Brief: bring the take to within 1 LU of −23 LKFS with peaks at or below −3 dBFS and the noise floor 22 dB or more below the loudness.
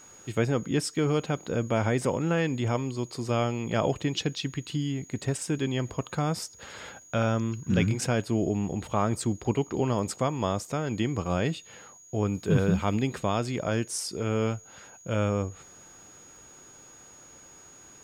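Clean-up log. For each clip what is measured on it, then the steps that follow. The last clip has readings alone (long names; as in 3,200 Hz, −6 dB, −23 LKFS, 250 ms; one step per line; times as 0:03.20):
crackle rate 30 per second; interfering tone 6,700 Hz; level of the tone −50 dBFS; integrated loudness −28.5 LKFS; sample peak −10.5 dBFS; target loudness −23.0 LKFS
→ click removal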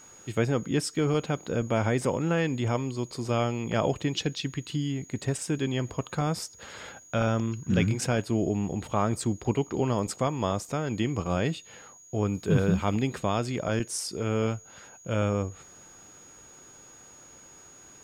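crackle rate 0.22 per second; interfering tone 6,700 Hz; level of the tone −50 dBFS
→ notch filter 6,700 Hz, Q 30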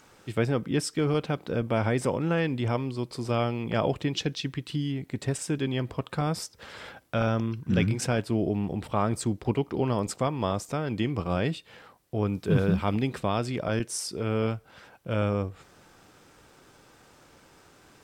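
interfering tone none found; integrated loudness −28.5 LKFS; sample peak −10.5 dBFS; target loudness −23.0 LKFS
→ level +5.5 dB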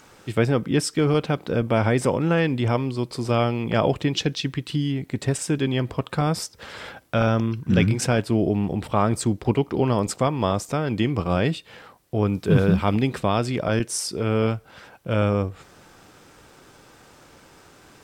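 integrated loudness −23.0 LKFS; sample peak −5.0 dBFS; background noise floor −52 dBFS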